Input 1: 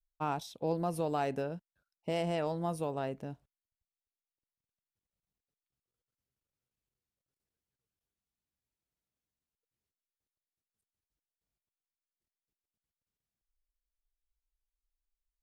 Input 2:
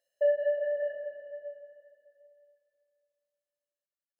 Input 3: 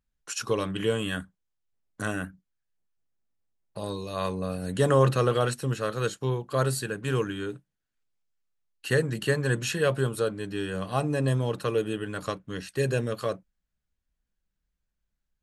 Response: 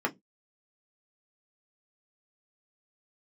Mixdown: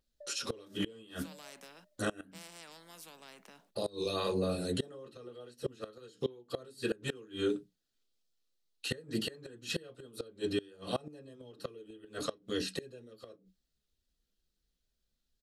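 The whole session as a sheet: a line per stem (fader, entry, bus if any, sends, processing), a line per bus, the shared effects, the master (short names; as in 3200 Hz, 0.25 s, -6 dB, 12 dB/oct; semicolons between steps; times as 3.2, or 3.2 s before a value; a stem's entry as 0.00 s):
-12.5 dB, 0.25 s, no bus, no send, steep high-pass 180 Hz 72 dB/oct; gate with hold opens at -60 dBFS; spectral compressor 4:1
-17.0 dB, 0.00 s, bus A, no send, LPF 1000 Hz; compressor, threshold -34 dBFS, peak gain reduction 11.5 dB
+1.5 dB, 0.00 s, bus A, send -5 dB, graphic EQ 125/250/1000/2000/4000 Hz -8/-5/-12/-9/+10 dB; limiter -21.5 dBFS, peak gain reduction 7 dB
bus A: 0.0 dB, wow and flutter 89 cents; limiter -31 dBFS, peak gain reduction 11 dB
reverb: on, pre-delay 3 ms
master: flipped gate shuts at -21 dBFS, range -25 dB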